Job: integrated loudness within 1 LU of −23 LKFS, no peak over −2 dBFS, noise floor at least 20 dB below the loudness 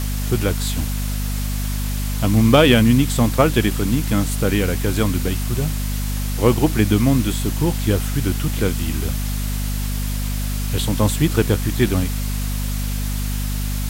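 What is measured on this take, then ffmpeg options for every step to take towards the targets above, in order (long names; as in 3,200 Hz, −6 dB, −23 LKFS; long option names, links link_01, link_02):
mains hum 50 Hz; hum harmonics up to 250 Hz; level of the hum −20 dBFS; background noise floor −23 dBFS; target noise floor −40 dBFS; integrated loudness −20.0 LKFS; sample peak −1.5 dBFS; target loudness −23.0 LKFS
→ -af "bandreject=frequency=50:width_type=h:width=6,bandreject=frequency=100:width_type=h:width=6,bandreject=frequency=150:width_type=h:width=6,bandreject=frequency=200:width_type=h:width=6,bandreject=frequency=250:width_type=h:width=6"
-af "afftdn=noise_reduction=17:noise_floor=-23"
-af "volume=-3dB"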